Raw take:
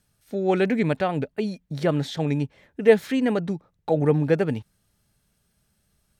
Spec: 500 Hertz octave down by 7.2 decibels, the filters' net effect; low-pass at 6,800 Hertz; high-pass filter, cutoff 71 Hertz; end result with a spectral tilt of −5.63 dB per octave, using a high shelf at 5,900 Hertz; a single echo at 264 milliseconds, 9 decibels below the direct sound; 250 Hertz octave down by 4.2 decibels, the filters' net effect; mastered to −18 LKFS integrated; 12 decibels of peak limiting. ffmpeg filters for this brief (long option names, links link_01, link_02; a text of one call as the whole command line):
ffmpeg -i in.wav -af "highpass=71,lowpass=6800,equalizer=frequency=250:width_type=o:gain=-3.5,equalizer=frequency=500:width_type=o:gain=-7.5,highshelf=frequency=5900:gain=7.5,alimiter=limit=-21dB:level=0:latency=1,aecho=1:1:264:0.355,volume=13dB" out.wav